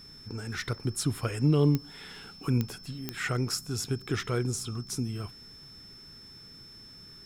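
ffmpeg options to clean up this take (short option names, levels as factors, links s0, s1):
-af "adeclick=t=4,bandreject=f=5300:w=30"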